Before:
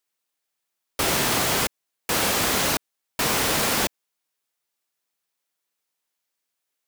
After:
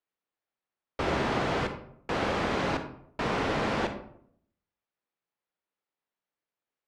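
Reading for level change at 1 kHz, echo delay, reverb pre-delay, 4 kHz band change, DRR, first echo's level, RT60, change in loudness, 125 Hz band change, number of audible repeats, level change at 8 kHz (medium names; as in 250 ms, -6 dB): -3.5 dB, no echo, 36 ms, -13.0 dB, 7.5 dB, no echo, 0.65 s, -8.0 dB, -1.5 dB, no echo, -25.0 dB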